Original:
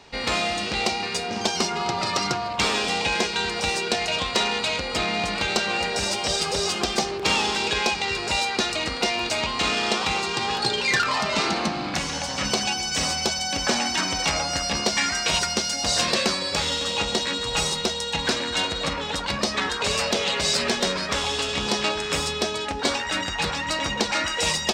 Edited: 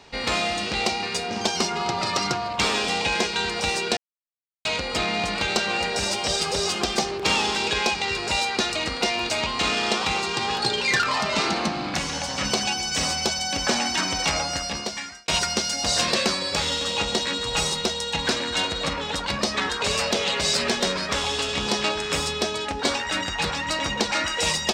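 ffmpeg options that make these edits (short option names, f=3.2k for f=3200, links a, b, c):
-filter_complex "[0:a]asplit=4[a][b][c][d];[a]atrim=end=3.97,asetpts=PTS-STARTPTS,afade=t=out:st=3.966:d=0.004:c=hsin[e];[b]atrim=start=3.97:end=4.65,asetpts=PTS-STARTPTS,volume=0[f];[c]atrim=start=4.65:end=15.28,asetpts=PTS-STARTPTS,afade=t=in:d=0.004:c=hsin,afade=t=out:st=9.74:d=0.89[g];[d]atrim=start=15.28,asetpts=PTS-STARTPTS,afade=t=in:d=0.004:c=hsin[h];[e][f][g][h]concat=n=4:v=0:a=1"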